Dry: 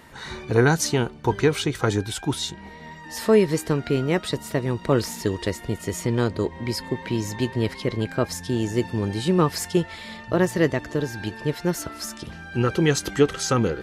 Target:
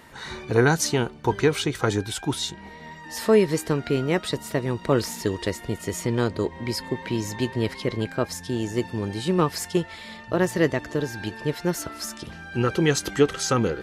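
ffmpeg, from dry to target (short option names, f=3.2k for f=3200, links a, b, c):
-filter_complex "[0:a]lowshelf=f=200:g=-3,asettb=1/sr,asplit=3[a][b][c];[a]atrim=end=8.094[d];[b]atrim=start=8.09:end=10.45,asetpts=PTS-STARTPTS,afade=t=in:d=0.004:c=qsin,afade=t=out:st=2.356:d=0.004:c=qsin,aeval=exprs='0.398*(cos(1*acos(clip(val(0)/0.398,-1,1)))-cos(1*PI/2))+0.0251*(cos(3*acos(clip(val(0)/0.398,-1,1)))-cos(3*PI/2))':c=same[e];[c]atrim=start=10.446[f];[d][e]acrossfade=d=0.004:c1=hsin:c2=qsin[g];[g][f]acrossfade=d=0.004:c1=qsin:c2=hsin"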